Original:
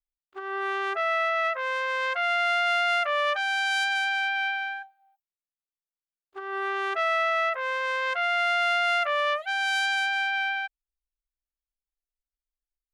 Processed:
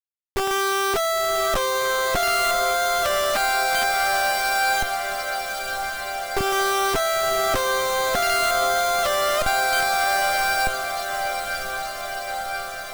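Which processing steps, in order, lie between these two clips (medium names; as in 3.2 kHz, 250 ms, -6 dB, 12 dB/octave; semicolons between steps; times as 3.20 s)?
Schmitt trigger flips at -38.5 dBFS; echo that smears into a reverb 1029 ms, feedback 71%, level -7.5 dB; trim +7 dB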